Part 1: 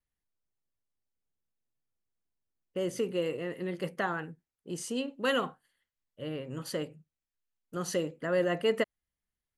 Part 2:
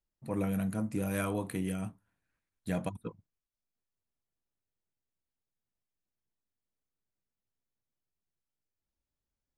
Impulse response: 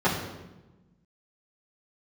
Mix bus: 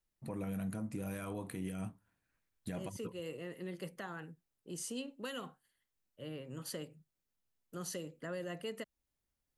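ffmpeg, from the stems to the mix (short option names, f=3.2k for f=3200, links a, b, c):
-filter_complex "[0:a]highshelf=f=7.6k:g=8,acrossover=split=230|3000[a][b][c];[b]acompressor=threshold=-43dB:ratio=1.5[d];[a][d][c]amix=inputs=3:normalize=0,volume=-6dB[e];[1:a]volume=1dB[f];[e][f]amix=inputs=2:normalize=0,alimiter=level_in=7dB:limit=-24dB:level=0:latency=1:release=225,volume=-7dB"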